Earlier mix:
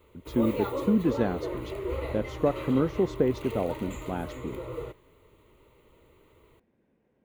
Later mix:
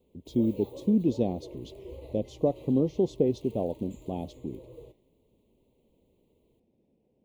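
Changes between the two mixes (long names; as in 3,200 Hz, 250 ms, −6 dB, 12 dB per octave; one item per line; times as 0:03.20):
background −11.0 dB
master: add Butterworth band-reject 1,500 Hz, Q 0.67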